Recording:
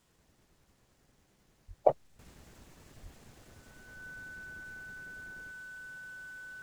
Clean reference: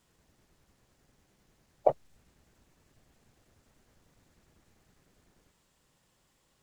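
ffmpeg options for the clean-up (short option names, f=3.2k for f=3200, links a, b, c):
-filter_complex "[0:a]adeclick=t=4,bandreject=f=1.5k:w=30,asplit=3[a][b][c];[a]afade=t=out:st=1.67:d=0.02[d];[b]highpass=f=140:w=0.5412,highpass=f=140:w=1.3066,afade=t=in:st=1.67:d=0.02,afade=t=out:st=1.79:d=0.02[e];[c]afade=t=in:st=1.79:d=0.02[f];[d][e][f]amix=inputs=3:normalize=0,asplit=3[g][h][i];[g]afade=t=out:st=3.02:d=0.02[j];[h]highpass=f=140:w=0.5412,highpass=f=140:w=1.3066,afade=t=in:st=3.02:d=0.02,afade=t=out:st=3.14:d=0.02[k];[i]afade=t=in:st=3.14:d=0.02[l];[j][k][l]amix=inputs=3:normalize=0,asetnsamples=n=441:p=0,asendcmd='2.19 volume volume -10.5dB',volume=0dB"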